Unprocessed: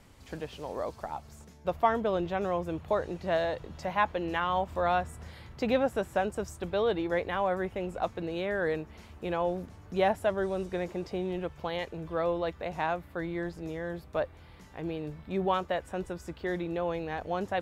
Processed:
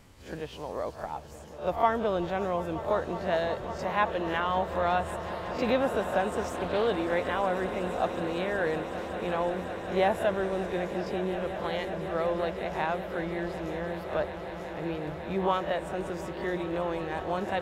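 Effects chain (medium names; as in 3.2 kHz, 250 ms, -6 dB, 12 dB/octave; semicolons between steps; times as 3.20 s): reverse spectral sustain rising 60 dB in 0.30 s; echo with a slow build-up 185 ms, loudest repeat 8, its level -17 dB; 6.42–6.87 s: loudspeaker Doppler distortion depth 0.23 ms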